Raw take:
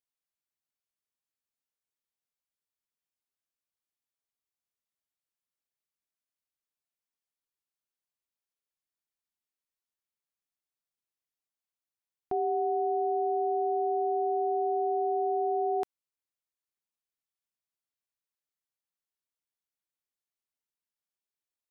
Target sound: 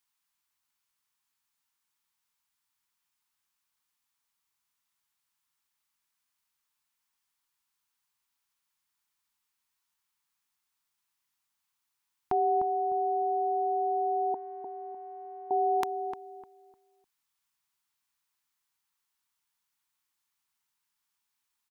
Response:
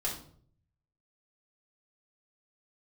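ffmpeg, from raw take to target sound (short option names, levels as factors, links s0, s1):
-filter_complex "[0:a]asettb=1/sr,asplit=3[s0][s1][s2];[s0]atrim=end=14.344[s3];[s1]atrim=start=14.34:end=15.51,asetpts=PTS-STARTPTS,afade=t=in:d=0.004:c=qsin,afade=t=out:st=1.166:d=0.004:c=qsin,agate=range=0.0224:threshold=0.126:ratio=3:detection=peak[s4];[s2]atrim=start=15.506[s5];[s3][s4]acrossfade=d=0.004:c1=hsin:c2=qsin[s6];[s6][s5]acrossfade=d=0.004:c1=qsin:c2=hsin,firequalizer=gain_entry='entry(180,0);entry(590,-9);entry(910,9);entry(1600,6)':delay=0.05:min_phase=1,asplit=2[s7][s8];[s8]adelay=302,lowpass=f=860:p=1,volume=0.501,asplit=2[s9][s10];[s10]adelay=302,lowpass=f=860:p=1,volume=0.31,asplit=2[s11][s12];[s12]adelay=302,lowpass=f=860:p=1,volume=0.31,asplit=2[s13][s14];[s14]adelay=302,lowpass=f=860:p=1,volume=0.31[s15];[s7][s9][s11][s13][s15]amix=inputs=5:normalize=0,volume=1.78"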